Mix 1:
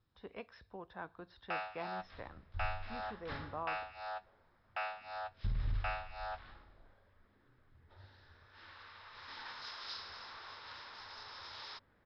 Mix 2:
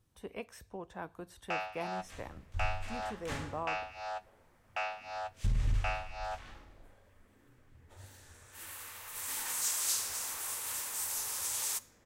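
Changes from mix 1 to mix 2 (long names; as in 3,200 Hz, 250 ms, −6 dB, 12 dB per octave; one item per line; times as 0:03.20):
second sound: send on
master: remove Chebyshev low-pass with heavy ripple 5,300 Hz, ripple 6 dB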